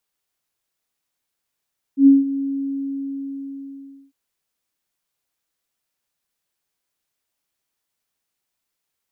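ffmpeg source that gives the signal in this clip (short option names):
-f lavfi -i "aevalsrc='0.531*sin(2*PI*275*t)':d=2.15:s=44100,afade=t=in:d=0.096,afade=t=out:st=0.096:d=0.175:silence=0.178,afade=t=out:st=0.43:d=1.72"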